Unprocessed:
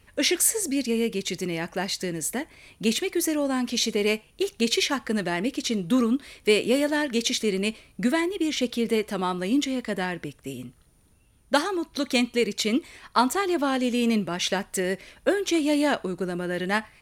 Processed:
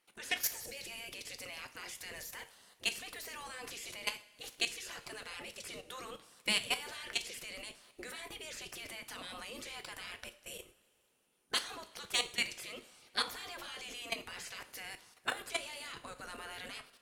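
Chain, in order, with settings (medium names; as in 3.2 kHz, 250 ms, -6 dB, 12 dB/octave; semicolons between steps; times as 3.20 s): spectral gate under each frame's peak -15 dB weak; level held to a coarse grid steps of 16 dB; two-slope reverb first 0.39 s, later 2.4 s, from -18 dB, DRR 9 dB; trim +1.5 dB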